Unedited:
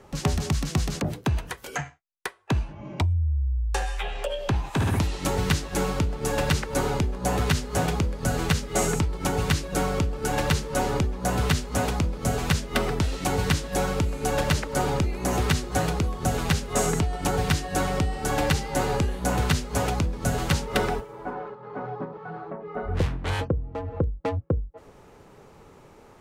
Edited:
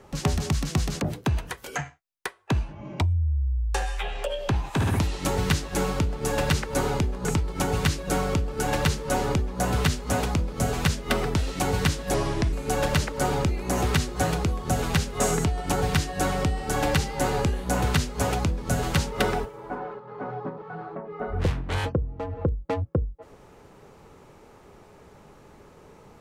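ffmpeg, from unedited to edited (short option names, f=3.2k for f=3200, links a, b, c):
-filter_complex "[0:a]asplit=4[a][b][c][d];[a]atrim=end=7.252[e];[b]atrim=start=8.898:end=13.794[f];[c]atrim=start=13.79:end=14.08,asetpts=PTS-STARTPTS,asetrate=33075,aresample=44100[g];[d]atrim=start=14.076[h];[e][f]acrossfade=d=0.004:c1=hsin:c2=hsin[i];[i][g]acrossfade=d=0.004:c1=hsin:c2=hsin[j];[j][h]acrossfade=d=0.004:c1=hsin:c2=hsin"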